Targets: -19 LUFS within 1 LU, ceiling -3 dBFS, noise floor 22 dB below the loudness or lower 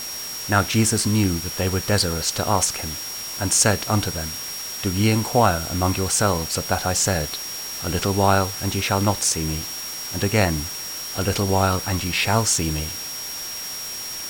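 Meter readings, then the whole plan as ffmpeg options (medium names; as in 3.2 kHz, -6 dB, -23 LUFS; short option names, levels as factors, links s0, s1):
steady tone 5.6 kHz; tone level -31 dBFS; noise floor -32 dBFS; noise floor target -44 dBFS; loudness -21.5 LUFS; peak level -2.5 dBFS; loudness target -19.0 LUFS
-> -af "bandreject=f=5600:w=30"
-af "afftdn=nr=12:nf=-32"
-af "volume=1.33,alimiter=limit=0.708:level=0:latency=1"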